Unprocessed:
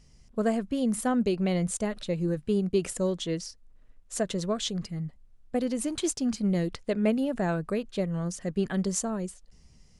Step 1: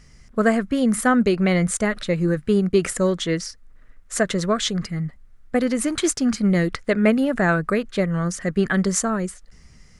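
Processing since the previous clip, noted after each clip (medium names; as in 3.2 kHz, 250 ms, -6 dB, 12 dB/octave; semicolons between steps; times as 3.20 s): high-order bell 1.6 kHz +8.5 dB 1.1 oct; trim +7.5 dB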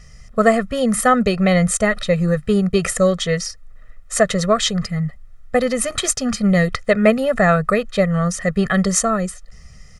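comb 1.6 ms, depth 97%; trim +2 dB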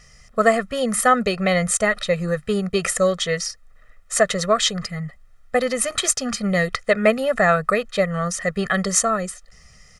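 bass shelf 300 Hz -10 dB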